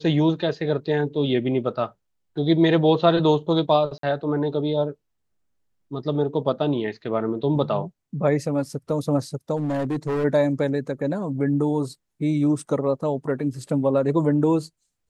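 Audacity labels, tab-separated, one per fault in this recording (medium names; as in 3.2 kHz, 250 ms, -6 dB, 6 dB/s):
3.980000	4.030000	dropout 53 ms
9.560000	10.250000	clipped -21 dBFS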